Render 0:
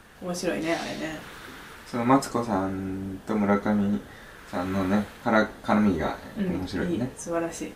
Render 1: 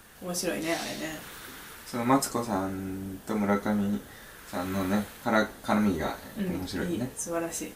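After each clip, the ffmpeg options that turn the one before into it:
-af "aemphasis=mode=production:type=50kf,volume=0.668"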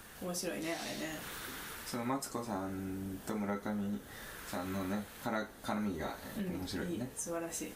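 -af "acompressor=threshold=0.0112:ratio=2.5"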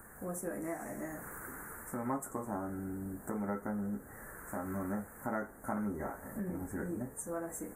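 -af "asuperstop=centerf=3800:order=8:qfactor=0.66"

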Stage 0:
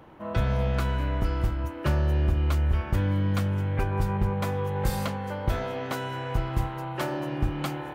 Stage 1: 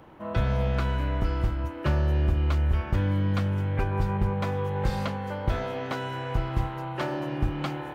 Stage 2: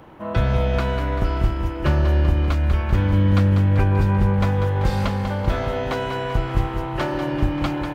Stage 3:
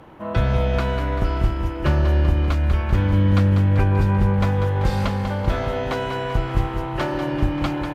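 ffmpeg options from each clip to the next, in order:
-filter_complex "[0:a]acrossover=split=5600[s0][s1];[s1]acompressor=threshold=0.00112:ratio=4:attack=1:release=60[s2];[s0][s2]amix=inputs=2:normalize=0"
-af "aecho=1:1:194|388|582|776|970|1164|1358:0.398|0.231|0.134|0.0777|0.0451|0.0261|0.0152,volume=1.88"
-af "aresample=32000,aresample=44100"

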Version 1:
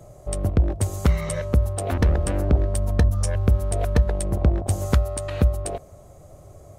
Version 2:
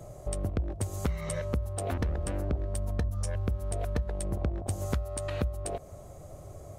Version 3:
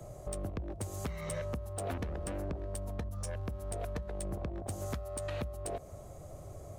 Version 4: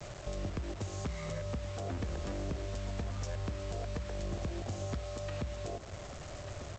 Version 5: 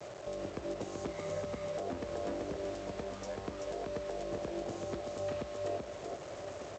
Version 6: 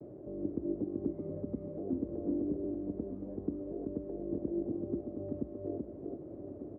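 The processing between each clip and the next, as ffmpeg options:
-af "acompressor=threshold=0.0282:ratio=3"
-filter_complex "[0:a]acrossover=split=160|820[s0][s1][s2];[s0]alimiter=level_in=2.37:limit=0.0631:level=0:latency=1:release=387,volume=0.422[s3];[s3][s1][s2]amix=inputs=3:normalize=0,asoftclip=type=tanh:threshold=0.0398,volume=0.841"
-filter_complex "[0:a]aresample=16000,acrusher=bits=7:mix=0:aa=0.000001,aresample=44100,aecho=1:1:1196:0.224,acrossover=split=350[s0][s1];[s1]acompressor=threshold=0.00891:ratio=6[s2];[s0][s2]amix=inputs=2:normalize=0,volume=1.12"
-af "crystalizer=i=8.5:c=0,bandpass=f=450:t=q:w=1.2:csg=0,aecho=1:1:383:0.668,volume=1.41"
-af "lowpass=f=300:t=q:w=3.6"

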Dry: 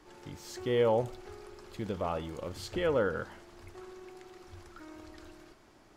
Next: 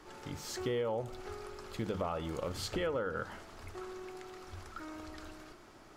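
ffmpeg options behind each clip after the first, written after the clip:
-af "equalizer=f=1300:t=o:w=0.22:g=5,bandreject=f=50:t=h:w=6,bandreject=f=100:t=h:w=6,bandreject=f=150:t=h:w=6,bandreject=f=200:t=h:w=6,bandreject=f=250:t=h:w=6,bandreject=f=300:t=h:w=6,bandreject=f=350:t=h:w=6,acompressor=threshold=0.0178:ratio=8,volume=1.5"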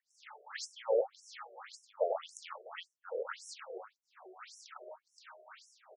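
-filter_complex "[0:a]aecho=1:1:95|649|858:0.501|0.158|0.2,acrossover=split=800[s0][s1];[s0]aeval=exprs='val(0)*(1-1/2+1/2*cos(2*PI*1*n/s))':c=same[s2];[s1]aeval=exprs='val(0)*(1-1/2-1/2*cos(2*PI*1*n/s))':c=same[s3];[s2][s3]amix=inputs=2:normalize=0,afftfilt=real='re*between(b*sr/1024,490*pow(7700/490,0.5+0.5*sin(2*PI*1.8*pts/sr))/1.41,490*pow(7700/490,0.5+0.5*sin(2*PI*1.8*pts/sr))*1.41)':imag='im*between(b*sr/1024,490*pow(7700/490,0.5+0.5*sin(2*PI*1.8*pts/sr))/1.41,490*pow(7700/490,0.5+0.5*sin(2*PI*1.8*pts/sr))*1.41)':win_size=1024:overlap=0.75,volume=2.82"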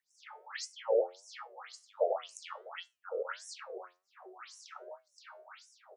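-af "flanger=delay=7.7:depth=3.6:regen=80:speed=1.4:shape=sinusoidal,volume=2"

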